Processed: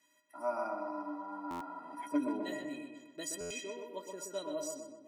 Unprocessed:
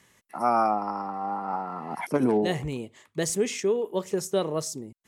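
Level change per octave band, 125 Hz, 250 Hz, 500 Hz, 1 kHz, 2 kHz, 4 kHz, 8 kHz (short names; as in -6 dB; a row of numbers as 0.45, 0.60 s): -24.0, -9.5, -13.0, -14.0, -9.5, -10.0, -9.5 dB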